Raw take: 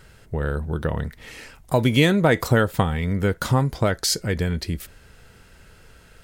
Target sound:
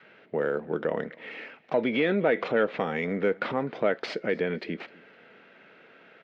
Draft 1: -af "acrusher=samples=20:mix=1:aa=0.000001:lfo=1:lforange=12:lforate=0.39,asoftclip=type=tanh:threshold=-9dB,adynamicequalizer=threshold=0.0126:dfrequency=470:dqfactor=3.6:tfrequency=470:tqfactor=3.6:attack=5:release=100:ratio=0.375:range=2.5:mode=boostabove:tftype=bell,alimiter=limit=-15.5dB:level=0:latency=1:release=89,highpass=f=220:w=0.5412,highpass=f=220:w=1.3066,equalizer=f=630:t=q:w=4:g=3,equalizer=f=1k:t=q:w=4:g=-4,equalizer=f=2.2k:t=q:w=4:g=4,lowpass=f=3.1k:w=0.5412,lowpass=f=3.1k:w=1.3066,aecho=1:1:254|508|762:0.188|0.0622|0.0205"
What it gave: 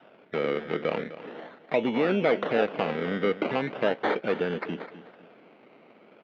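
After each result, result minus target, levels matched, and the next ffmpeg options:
decimation with a swept rate: distortion +10 dB; echo-to-direct +10 dB
-af "acrusher=samples=4:mix=1:aa=0.000001:lfo=1:lforange=2.4:lforate=0.39,asoftclip=type=tanh:threshold=-9dB,adynamicequalizer=threshold=0.0126:dfrequency=470:dqfactor=3.6:tfrequency=470:tqfactor=3.6:attack=5:release=100:ratio=0.375:range=2.5:mode=boostabove:tftype=bell,alimiter=limit=-15.5dB:level=0:latency=1:release=89,highpass=f=220:w=0.5412,highpass=f=220:w=1.3066,equalizer=f=630:t=q:w=4:g=3,equalizer=f=1k:t=q:w=4:g=-4,equalizer=f=2.2k:t=q:w=4:g=4,lowpass=f=3.1k:w=0.5412,lowpass=f=3.1k:w=1.3066,aecho=1:1:254|508|762:0.188|0.0622|0.0205"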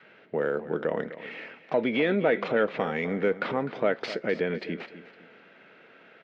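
echo-to-direct +10 dB
-af "acrusher=samples=4:mix=1:aa=0.000001:lfo=1:lforange=2.4:lforate=0.39,asoftclip=type=tanh:threshold=-9dB,adynamicequalizer=threshold=0.0126:dfrequency=470:dqfactor=3.6:tfrequency=470:tqfactor=3.6:attack=5:release=100:ratio=0.375:range=2.5:mode=boostabove:tftype=bell,alimiter=limit=-15.5dB:level=0:latency=1:release=89,highpass=f=220:w=0.5412,highpass=f=220:w=1.3066,equalizer=f=630:t=q:w=4:g=3,equalizer=f=1k:t=q:w=4:g=-4,equalizer=f=2.2k:t=q:w=4:g=4,lowpass=f=3.1k:w=0.5412,lowpass=f=3.1k:w=1.3066,aecho=1:1:254|508:0.0596|0.0197"

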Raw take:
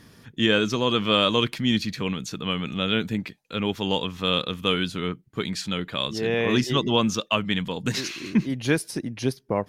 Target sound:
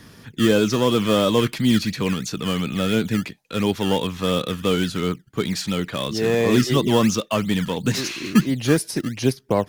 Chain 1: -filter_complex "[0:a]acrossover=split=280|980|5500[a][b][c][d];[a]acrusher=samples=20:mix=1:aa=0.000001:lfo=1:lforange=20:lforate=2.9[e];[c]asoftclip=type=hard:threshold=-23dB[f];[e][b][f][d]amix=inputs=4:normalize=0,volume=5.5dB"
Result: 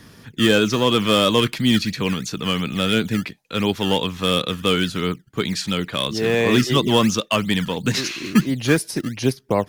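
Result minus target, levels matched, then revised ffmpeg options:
hard clip: distortion -8 dB
-filter_complex "[0:a]acrossover=split=280|980|5500[a][b][c][d];[a]acrusher=samples=20:mix=1:aa=0.000001:lfo=1:lforange=20:lforate=2.9[e];[c]asoftclip=type=hard:threshold=-34.5dB[f];[e][b][f][d]amix=inputs=4:normalize=0,volume=5.5dB"

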